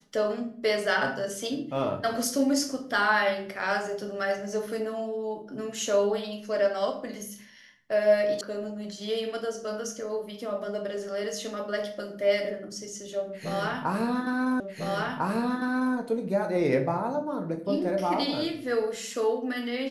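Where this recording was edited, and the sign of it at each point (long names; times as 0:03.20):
0:08.41: cut off before it has died away
0:14.60: the same again, the last 1.35 s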